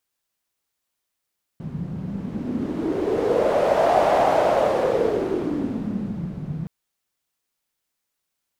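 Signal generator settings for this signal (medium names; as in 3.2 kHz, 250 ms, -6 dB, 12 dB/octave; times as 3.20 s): wind-like swept noise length 5.07 s, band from 160 Hz, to 680 Hz, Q 4.8, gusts 1, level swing 13 dB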